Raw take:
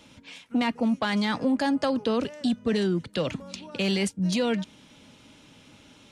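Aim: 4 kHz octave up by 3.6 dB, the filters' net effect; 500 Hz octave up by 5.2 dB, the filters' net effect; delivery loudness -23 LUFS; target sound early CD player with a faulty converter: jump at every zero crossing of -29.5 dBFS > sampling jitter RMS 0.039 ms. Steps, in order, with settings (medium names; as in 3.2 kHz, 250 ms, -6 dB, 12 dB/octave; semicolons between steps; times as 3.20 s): peaking EQ 500 Hz +6 dB; peaking EQ 4 kHz +4.5 dB; jump at every zero crossing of -29.5 dBFS; sampling jitter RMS 0.039 ms; trim +1 dB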